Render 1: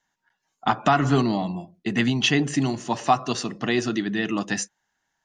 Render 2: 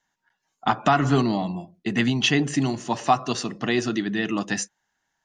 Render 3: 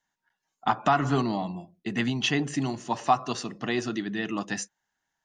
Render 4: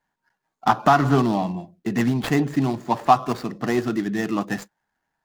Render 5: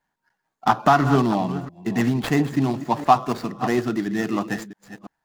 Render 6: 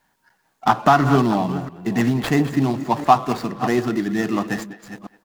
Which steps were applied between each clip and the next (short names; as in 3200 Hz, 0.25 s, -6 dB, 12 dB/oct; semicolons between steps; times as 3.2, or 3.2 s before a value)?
nothing audible
dynamic EQ 960 Hz, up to +4 dB, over -33 dBFS, Q 1.3; gain -5.5 dB
median filter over 15 samples; gain +7 dB
reverse delay 0.338 s, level -13 dB
G.711 law mismatch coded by mu; speakerphone echo 0.21 s, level -16 dB; gain +1.5 dB